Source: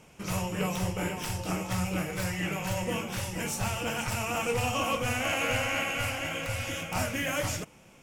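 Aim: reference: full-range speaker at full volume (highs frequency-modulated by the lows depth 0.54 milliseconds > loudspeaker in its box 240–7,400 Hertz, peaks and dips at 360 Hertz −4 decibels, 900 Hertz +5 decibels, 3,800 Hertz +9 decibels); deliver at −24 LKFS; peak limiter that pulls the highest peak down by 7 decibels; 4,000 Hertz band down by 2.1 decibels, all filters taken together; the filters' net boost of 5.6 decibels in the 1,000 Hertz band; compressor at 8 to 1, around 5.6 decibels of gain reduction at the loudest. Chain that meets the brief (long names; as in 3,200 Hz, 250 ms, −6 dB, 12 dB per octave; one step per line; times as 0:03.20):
parametric band 1,000 Hz +4.5 dB
parametric band 4,000 Hz −7.5 dB
downward compressor 8 to 1, threshold −30 dBFS
brickwall limiter −28 dBFS
highs frequency-modulated by the lows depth 0.54 ms
loudspeaker in its box 240–7,400 Hz, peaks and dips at 360 Hz −4 dB, 900 Hz +5 dB, 3,800 Hz +9 dB
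level +13 dB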